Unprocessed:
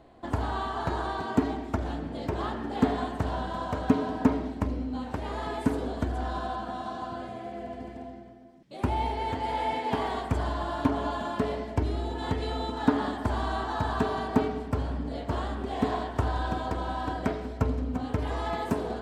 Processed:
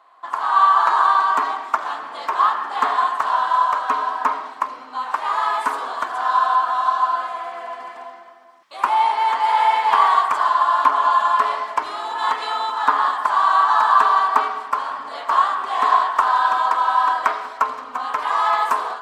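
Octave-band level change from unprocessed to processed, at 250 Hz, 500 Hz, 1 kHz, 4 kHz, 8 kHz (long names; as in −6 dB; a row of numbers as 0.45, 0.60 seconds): below −15 dB, 0.0 dB, +17.0 dB, +10.0 dB, can't be measured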